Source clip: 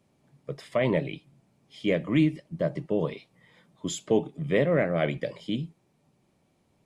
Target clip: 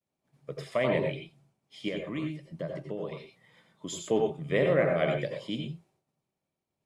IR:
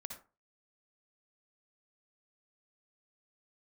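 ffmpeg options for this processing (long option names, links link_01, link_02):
-filter_complex "[0:a]agate=range=-33dB:threshold=-57dB:ratio=3:detection=peak,lowshelf=frequency=340:gain=-6,asettb=1/sr,asplit=3[link_01][link_02][link_03];[link_01]atrim=end=1.884[link_04];[link_02]atrim=start=1.88:end=3.99,asetpts=PTS-STARTPTS,afade=type=in:duration=0.004:curve=qsin,afade=type=out:start_time=2.106:duration=0.004:curve=qsin,acompressor=threshold=-34dB:ratio=3[link_05];[link_03]atrim=start=3.986[link_06];[link_04][link_05]acrossfade=duration=0.004:curve1=hsin:curve2=qsin[link_07];[link_07][link_06]acrossfade=duration=0.004:curve1=qsin:curve2=hsin[link_08];[1:a]atrim=start_sample=2205,atrim=end_sample=3969,asetrate=29988,aresample=44100[link_09];[link_08][link_09]afir=irnorm=-1:irlink=0,volume=2dB"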